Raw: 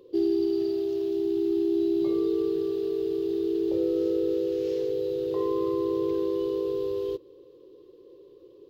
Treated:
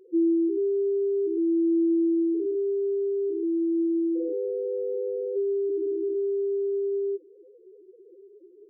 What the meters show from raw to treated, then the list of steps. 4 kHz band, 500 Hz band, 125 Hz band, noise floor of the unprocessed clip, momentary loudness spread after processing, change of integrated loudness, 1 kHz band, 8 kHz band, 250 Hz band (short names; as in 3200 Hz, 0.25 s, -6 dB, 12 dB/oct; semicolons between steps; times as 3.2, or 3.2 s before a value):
under -35 dB, +0.5 dB, under -25 dB, -53 dBFS, 7 LU, +1.0 dB, under -35 dB, n/a, +2.0 dB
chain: loudest bins only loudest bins 2; gain +4.5 dB